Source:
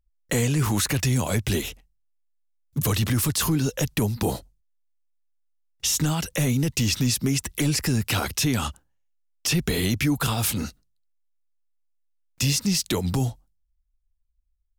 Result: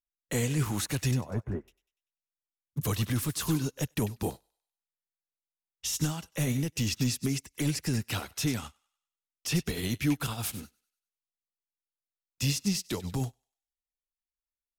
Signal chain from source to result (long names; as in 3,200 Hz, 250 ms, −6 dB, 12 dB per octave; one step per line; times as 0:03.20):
0:01.11–0:01.68: inverse Chebyshev low-pass filter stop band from 4,800 Hz, stop band 60 dB
on a send: feedback echo with a high-pass in the loop 97 ms, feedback 48%, high-pass 680 Hz, level −10.5 dB
on the sum: expander for the loud parts 2.5 to 1, over −38 dBFS
level −3 dB